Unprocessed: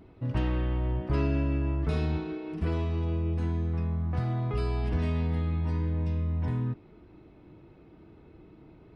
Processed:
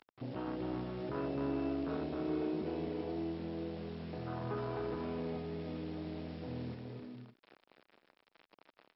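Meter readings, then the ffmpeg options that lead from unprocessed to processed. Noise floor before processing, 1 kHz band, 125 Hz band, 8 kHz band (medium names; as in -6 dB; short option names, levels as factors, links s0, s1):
-54 dBFS, -4.5 dB, -16.5 dB, no reading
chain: -filter_complex "[0:a]afwtdn=0.02,highshelf=f=2200:g=12,acompressor=threshold=0.00891:ratio=3,acrusher=bits=9:mix=0:aa=0.000001,asoftclip=type=tanh:threshold=0.0188,highpass=260,lowpass=4200,asplit=2[s0][s1];[s1]aecho=0:1:260|416|509.6|565.8|599.5:0.631|0.398|0.251|0.158|0.1[s2];[s0][s2]amix=inputs=2:normalize=0,volume=2.82" -ar 44100 -c:a mp2 -b:a 48k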